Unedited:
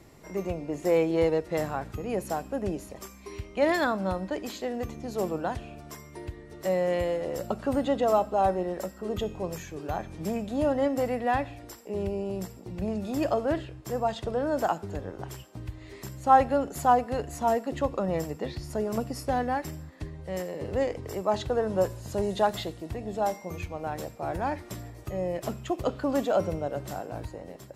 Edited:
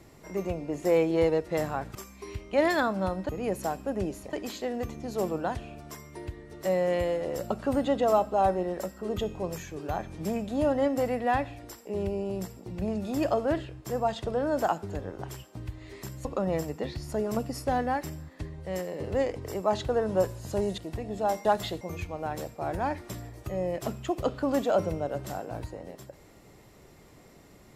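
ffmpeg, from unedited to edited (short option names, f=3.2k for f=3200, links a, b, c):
-filter_complex "[0:a]asplit=8[a][b][c][d][e][f][g][h];[a]atrim=end=1.952[i];[b]atrim=start=2.988:end=4.332[j];[c]atrim=start=1.948:end=2.992[k];[d]atrim=start=4.328:end=16.252[l];[e]atrim=start=17.858:end=22.392[m];[f]atrim=start=22.748:end=23.422[n];[g]atrim=start=22.388:end=22.752[o];[h]atrim=start=23.418[p];[i][j]acrossfade=d=0.004:c1=hsin:c2=hsin[q];[q][k]acrossfade=d=0.004:c1=hsin:c2=hsin[r];[r][l]acrossfade=d=0.004:c1=hsin:c2=hsin[s];[s][m]acrossfade=d=0.004:c1=hsin:c2=hsin[t];[t][n]acrossfade=d=0.004:c1=hsin:c2=hsin[u];[u][o]acrossfade=d=0.004:c1=hsin:c2=hsin[v];[v][p]acrossfade=d=0.004:c1=hsin:c2=hsin"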